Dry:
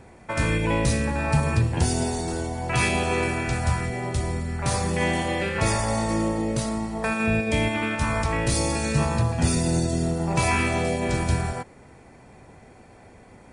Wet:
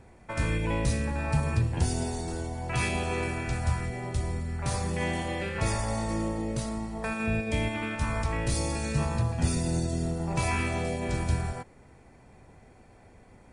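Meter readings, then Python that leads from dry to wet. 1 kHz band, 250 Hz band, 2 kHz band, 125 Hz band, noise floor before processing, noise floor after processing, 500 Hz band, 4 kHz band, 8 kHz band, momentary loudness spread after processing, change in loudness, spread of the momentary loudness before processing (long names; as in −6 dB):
−7.0 dB, −6.0 dB, −7.0 dB, −4.0 dB, −49 dBFS, −55 dBFS, −7.0 dB, −7.0 dB, −7.0 dB, 5 LU, −5.5 dB, 5 LU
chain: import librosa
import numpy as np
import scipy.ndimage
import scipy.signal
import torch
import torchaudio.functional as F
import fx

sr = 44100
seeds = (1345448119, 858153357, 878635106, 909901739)

y = fx.low_shelf(x, sr, hz=70.0, db=9.0)
y = y * 10.0 ** (-7.0 / 20.0)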